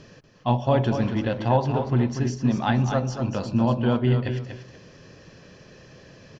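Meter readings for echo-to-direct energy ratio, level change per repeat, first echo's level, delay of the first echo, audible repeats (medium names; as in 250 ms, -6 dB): -7.5 dB, -13.0 dB, -7.5 dB, 239 ms, 2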